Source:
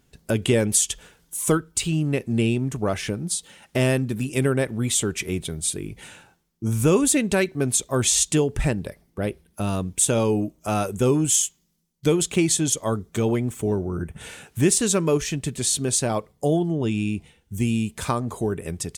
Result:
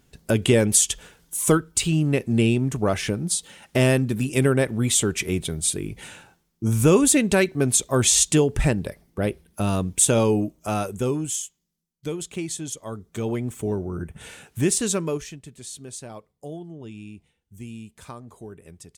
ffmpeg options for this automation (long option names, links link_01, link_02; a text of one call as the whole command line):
ffmpeg -i in.wav -af "volume=9.5dB,afade=type=out:start_time=10.18:duration=1.26:silence=0.251189,afade=type=in:start_time=12.89:duration=0.62:silence=0.421697,afade=type=out:start_time=14.9:duration=0.49:silence=0.237137" out.wav